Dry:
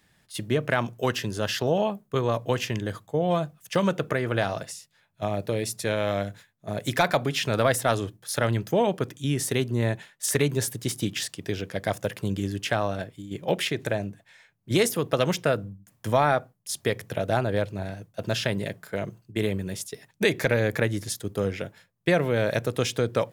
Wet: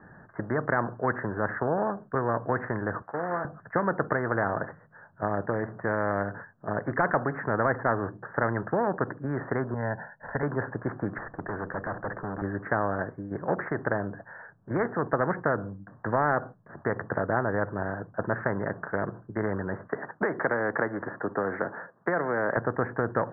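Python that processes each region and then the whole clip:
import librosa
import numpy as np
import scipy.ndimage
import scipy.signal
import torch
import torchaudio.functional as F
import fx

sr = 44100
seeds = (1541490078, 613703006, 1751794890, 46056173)

y = fx.chain(x, sr, fx.cvsd(bps=16000),
    fx.highpass(hz=950.0, slope=6),
    fx.doubler(ms=23.0, db=-13), at=(3.02, 3.45))
y = fx.chain(y, sr, fx.median_filter(points=3),
    fx.peak_eq(hz=2400.0, db=-8.0, octaves=0.59),
    fx.fixed_phaser(hz=1800.0, stages=8), at=(9.74, 10.43))
y = fx.chain(y, sr, fx.highpass(hz=96.0, slope=24),
    fx.tube_stage(drive_db=34.0, bias=0.45), at=(11.18, 12.42))
y = fx.chain(y, sr, fx.highpass(hz=310.0, slope=12),
    fx.band_squash(depth_pct=70), at=(19.89, 22.57))
y = scipy.signal.sosfilt(scipy.signal.butter(16, 1700.0, 'lowpass', fs=sr, output='sos'), y)
y = fx.low_shelf(y, sr, hz=92.0, db=-11.0)
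y = fx.spectral_comp(y, sr, ratio=2.0)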